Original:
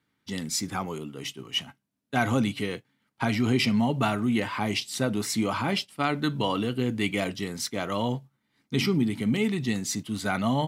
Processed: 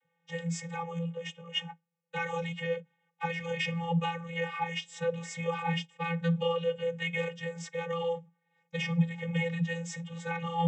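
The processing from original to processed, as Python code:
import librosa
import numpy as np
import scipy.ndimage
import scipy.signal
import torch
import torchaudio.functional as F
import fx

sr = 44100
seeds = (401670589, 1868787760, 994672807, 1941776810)

y = fx.fixed_phaser(x, sr, hz=900.0, stages=8)
y = fx.vocoder(y, sr, bands=32, carrier='square', carrier_hz=168.0)
y = fx.dynamic_eq(y, sr, hz=730.0, q=0.71, threshold_db=-43.0, ratio=4.0, max_db=-7)
y = y * librosa.db_to_amplitude(3.5)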